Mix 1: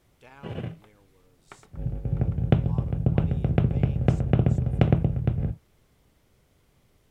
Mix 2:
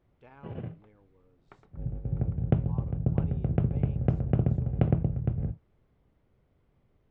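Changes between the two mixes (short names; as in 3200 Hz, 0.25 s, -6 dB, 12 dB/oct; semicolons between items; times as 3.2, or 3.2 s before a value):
background -3.5 dB; master: add tape spacing loss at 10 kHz 37 dB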